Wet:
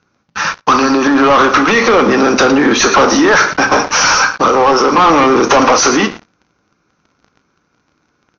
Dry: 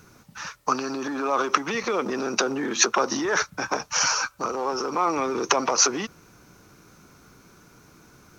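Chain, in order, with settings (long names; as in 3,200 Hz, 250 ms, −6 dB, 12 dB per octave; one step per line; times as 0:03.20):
in parallel at −9 dB: wave folding −11.5 dBFS
on the sum: high-pass filter 48 Hz 12 dB per octave
low-shelf EQ 440 Hz −6 dB
single-tap delay 110 ms −19 dB
on a send at −8.5 dB: convolution reverb RT60 0.50 s, pre-delay 4 ms
on the sum: leveller curve on the samples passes 5
Butterworth low-pass 6,400 Hz 72 dB per octave
high-shelf EQ 3,700 Hz −8.5 dB
level +1.5 dB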